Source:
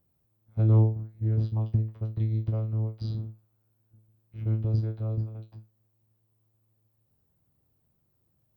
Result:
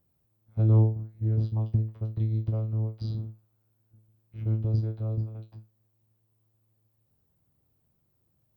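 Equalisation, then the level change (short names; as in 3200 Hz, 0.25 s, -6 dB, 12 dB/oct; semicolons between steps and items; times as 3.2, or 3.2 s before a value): dynamic EQ 1900 Hz, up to -5 dB, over -56 dBFS, Q 1.1; 0.0 dB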